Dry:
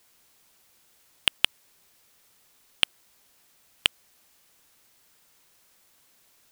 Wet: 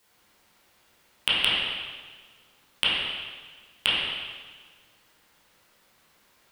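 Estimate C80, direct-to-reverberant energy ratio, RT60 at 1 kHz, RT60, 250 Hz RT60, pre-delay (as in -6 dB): 0.0 dB, -9.5 dB, 1.5 s, 1.5 s, 1.6 s, 7 ms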